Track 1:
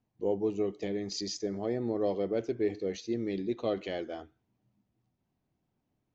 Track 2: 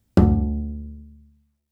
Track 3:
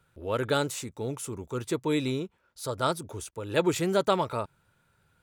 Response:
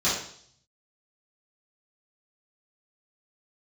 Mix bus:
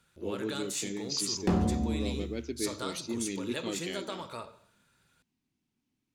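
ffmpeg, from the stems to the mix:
-filter_complex "[0:a]equalizer=frequency=250:width_type=o:width=0.67:gain=10,equalizer=frequency=630:width_type=o:width=0.67:gain=-9,equalizer=frequency=2500:width_type=o:width=0.67:gain=4,volume=-7dB[link_01];[1:a]agate=range=-8dB:threshold=-44dB:ratio=16:detection=peak,asoftclip=type=tanh:threshold=-17.5dB,adelay=1300,volume=-1.5dB,asplit=2[link_02][link_03];[link_03]volume=-13dB[link_04];[2:a]acompressor=threshold=-32dB:ratio=10,volume=-6.5dB,asplit=2[link_05][link_06];[link_06]volume=-20dB[link_07];[3:a]atrim=start_sample=2205[link_08];[link_04][link_07]amix=inputs=2:normalize=0[link_09];[link_09][link_08]afir=irnorm=-1:irlink=0[link_10];[link_01][link_02][link_05][link_10]amix=inputs=4:normalize=0,equalizer=frequency=5800:width_type=o:width=3:gain=11.5,alimiter=limit=-17.5dB:level=0:latency=1:release=418"

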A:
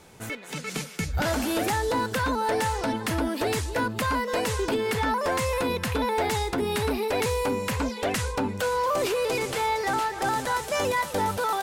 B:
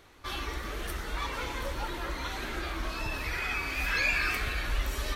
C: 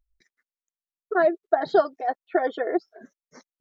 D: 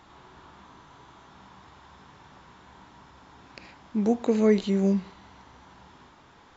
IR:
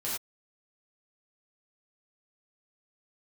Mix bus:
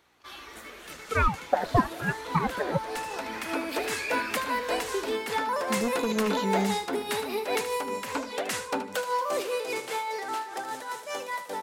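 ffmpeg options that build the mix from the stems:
-filter_complex "[0:a]highpass=320,dynaudnorm=framelen=240:gausssize=21:maxgain=7dB,tremolo=f=5:d=0.61,adelay=350,volume=-6.5dB,asplit=2[link_01][link_02];[link_02]volume=-10.5dB[link_03];[1:a]aeval=exprs='val(0)+0.00141*(sin(2*PI*60*n/s)+sin(2*PI*2*60*n/s)/2+sin(2*PI*3*60*n/s)/3+sin(2*PI*4*60*n/s)/4+sin(2*PI*5*60*n/s)/5)':channel_layout=same,highpass=frequency=420:poles=1,volume=-6.5dB[link_04];[2:a]aeval=exprs='val(0)*sin(2*PI*500*n/s+500*0.85/0.95*sin(2*PI*0.95*n/s))':channel_layout=same,volume=-0.5dB,asplit=2[link_05][link_06];[3:a]aemphasis=mode=production:type=75kf,aeval=exprs='0.168*(abs(mod(val(0)/0.168+3,4)-2)-1)':channel_layout=same,adelay=1750,volume=-5.5dB[link_07];[link_06]apad=whole_len=528122[link_08];[link_01][link_08]sidechaincompress=threshold=-25dB:ratio=3:attack=5.2:release=1190[link_09];[link_03]aecho=0:1:76|152|228|304:1|0.25|0.0625|0.0156[link_10];[link_09][link_04][link_05][link_07][link_10]amix=inputs=5:normalize=0"

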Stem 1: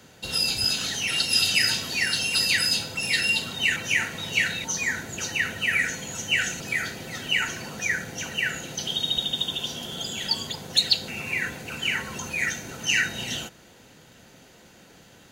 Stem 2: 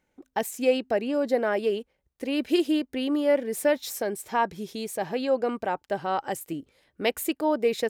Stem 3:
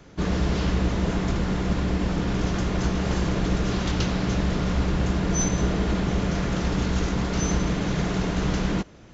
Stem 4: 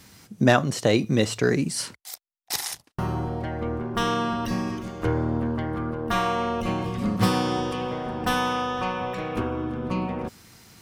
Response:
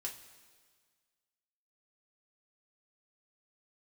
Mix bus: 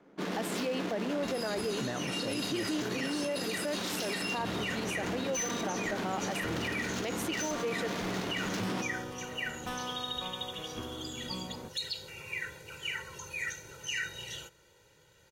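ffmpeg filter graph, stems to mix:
-filter_complex "[0:a]aecho=1:1:2.1:0.89,adelay=1000,volume=-13.5dB[link_01];[1:a]lowpass=11000,volume=-4.5dB[link_02];[2:a]highpass=frequency=210:width=0.5412,highpass=frequency=210:width=1.3066,aemphasis=mode=production:type=75kf,adynamicsmooth=sensitivity=6:basefreq=1100,volume=-6.5dB[link_03];[3:a]adelay=1400,volume=-14dB[link_04];[link_01][link_02][link_03][link_04]amix=inputs=4:normalize=0,alimiter=level_in=1dB:limit=-24dB:level=0:latency=1:release=33,volume=-1dB"

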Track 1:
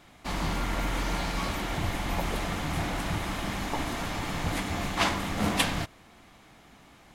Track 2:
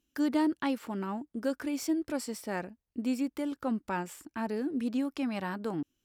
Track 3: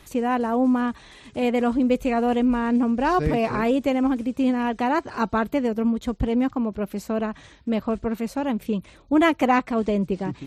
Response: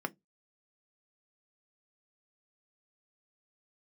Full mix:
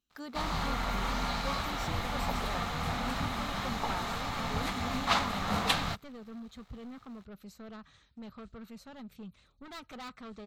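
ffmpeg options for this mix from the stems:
-filter_complex "[0:a]aeval=exprs='sgn(val(0))*max(abs(val(0))-0.002,0)':channel_layout=same,adelay=100,volume=-4dB[link_01];[1:a]volume=-8.5dB[link_02];[2:a]adynamicequalizer=threshold=0.0112:dfrequency=1300:dqfactor=1.6:tfrequency=1300:tqfactor=1.6:attack=5:release=100:ratio=0.375:range=4:mode=boostabove:tftype=bell,asoftclip=type=tanh:threshold=-22.5dB,equalizer=frequency=900:width=0.66:gain=-10,adelay=500,volume=-14.5dB[link_03];[link_01][link_02][link_03]amix=inputs=3:normalize=0,equalizer=frequency=315:width_type=o:width=0.33:gain=-11,equalizer=frequency=800:width_type=o:width=0.33:gain=4,equalizer=frequency=1250:width_type=o:width=0.33:gain=8,equalizer=frequency=4000:width_type=o:width=0.33:gain=7,equalizer=frequency=10000:width_type=o:width=0.33:gain=-8"

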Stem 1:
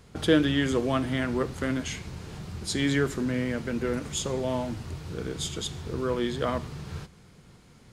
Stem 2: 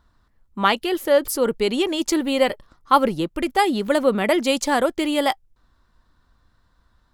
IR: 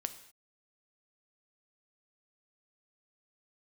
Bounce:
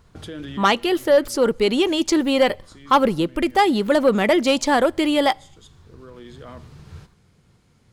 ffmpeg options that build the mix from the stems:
-filter_complex "[0:a]equalizer=frequency=93:width_type=o:width=0.79:gain=5,alimiter=limit=-20dB:level=0:latency=1:release=34,volume=-6.5dB,asplit=2[link_01][link_02];[link_02]volume=-19.5dB[link_03];[1:a]acrossover=split=7600[link_04][link_05];[link_05]acompressor=threshold=-45dB:ratio=4:attack=1:release=60[link_06];[link_04][link_06]amix=inputs=2:normalize=0,asoftclip=type=hard:threshold=-8dB,acontrast=82,volume=-5dB,asplit=3[link_07][link_08][link_09];[link_08]volume=-16.5dB[link_10];[link_09]apad=whole_len=349543[link_11];[link_01][link_11]sidechaincompress=threshold=-30dB:ratio=8:attack=6.6:release=1330[link_12];[2:a]atrim=start_sample=2205[link_13];[link_03][link_10]amix=inputs=2:normalize=0[link_14];[link_14][link_13]afir=irnorm=-1:irlink=0[link_15];[link_12][link_07][link_15]amix=inputs=3:normalize=0"

